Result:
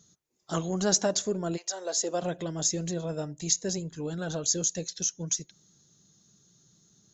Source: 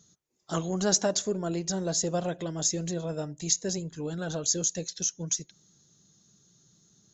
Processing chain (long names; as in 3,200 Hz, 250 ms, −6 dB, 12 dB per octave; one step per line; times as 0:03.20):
0:01.56–0:02.21: high-pass filter 750 Hz → 220 Hz 24 dB per octave